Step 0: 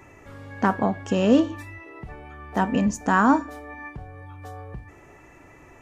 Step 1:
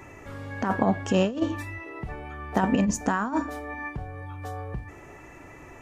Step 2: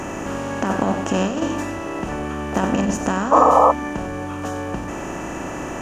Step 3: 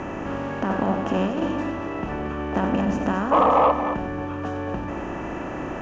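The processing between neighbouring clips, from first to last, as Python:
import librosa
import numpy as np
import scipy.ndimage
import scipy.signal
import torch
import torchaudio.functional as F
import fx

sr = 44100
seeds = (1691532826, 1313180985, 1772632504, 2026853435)

y1 = fx.over_compress(x, sr, threshold_db=-22.0, ratio=-0.5)
y2 = fx.bin_compress(y1, sr, power=0.4)
y2 = y2 + 10.0 ** (-10.5 / 20.0) * np.pad(y2, (int(95 * sr / 1000.0), 0))[:len(y2)]
y2 = fx.spec_paint(y2, sr, seeds[0], shape='noise', start_s=3.31, length_s=0.41, low_hz=440.0, high_hz=1300.0, level_db=-11.0)
y2 = y2 * librosa.db_to_amplitude(-1.5)
y3 = 10.0 ** (-7.5 / 20.0) * np.tanh(y2 / 10.0 ** (-7.5 / 20.0))
y3 = fx.air_absorb(y3, sr, metres=220.0)
y3 = y3 + 10.0 ** (-9.5 / 20.0) * np.pad(y3, (int(229 * sr / 1000.0), 0))[:len(y3)]
y3 = y3 * librosa.db_to_amplitude(-1.5)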